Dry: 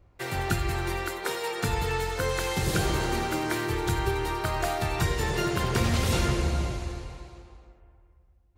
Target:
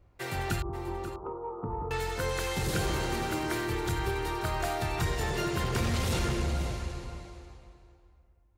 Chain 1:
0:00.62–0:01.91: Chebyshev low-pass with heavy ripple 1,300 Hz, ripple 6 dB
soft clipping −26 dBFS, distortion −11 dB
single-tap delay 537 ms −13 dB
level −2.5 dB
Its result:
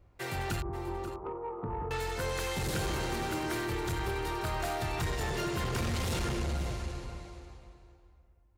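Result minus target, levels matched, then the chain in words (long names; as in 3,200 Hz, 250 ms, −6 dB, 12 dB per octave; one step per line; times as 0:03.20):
soft clipping: distortion +8 dB
0:00.62–0:01.91: Chebyshev low-pass with heavy ripple 1,300 Hz, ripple 6 dB
soft clipping −19 dBFS, distortion −19 dB
single-tap delay 537 ms −13 dB
level −2.5 dB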